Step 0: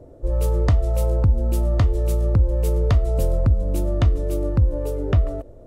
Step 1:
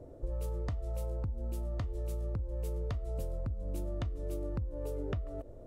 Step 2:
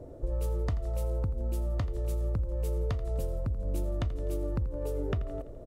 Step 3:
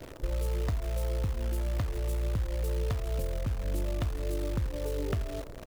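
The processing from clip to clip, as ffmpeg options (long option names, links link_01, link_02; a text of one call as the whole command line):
ffmpeg -i in.wav -af "acompressor=threshold=-27dB:ratio=12,volume=-5.5dB" out.wav
ffmpeg -i in.wav -af "aecho=1:1:84|168|252|336|420:0.158|0.0903|0.0515|0.0294|0.0167,volume=4.5dB" out.wav
ffmpeg -i in.wav -af "acrusher=bits=8:dc=4:mix=0:aa=0.000001" out.wav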